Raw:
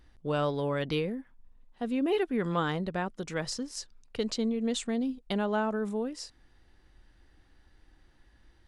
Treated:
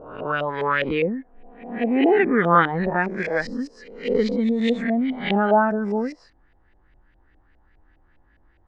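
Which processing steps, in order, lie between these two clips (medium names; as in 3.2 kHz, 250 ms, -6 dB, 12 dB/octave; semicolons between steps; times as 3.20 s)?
reverse spectral sustain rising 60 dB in 1.00 s; LFO low-pass saw up 4.9 Hz 600–2600 Hz; spectral noise reduction 10 dB; trim +8 dB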